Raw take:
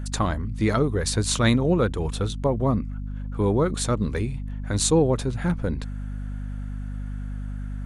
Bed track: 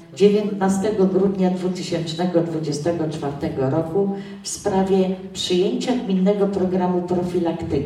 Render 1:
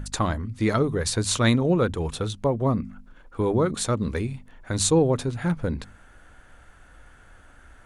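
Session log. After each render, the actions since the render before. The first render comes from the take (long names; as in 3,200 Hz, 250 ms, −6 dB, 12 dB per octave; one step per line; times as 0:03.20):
hum removal 50 Hz, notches 5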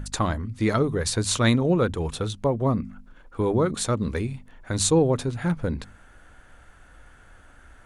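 no processing that can be heard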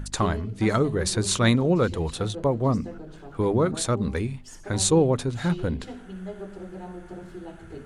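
mix in bed track −19 dB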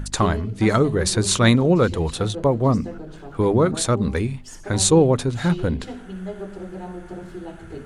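level +4.5 dB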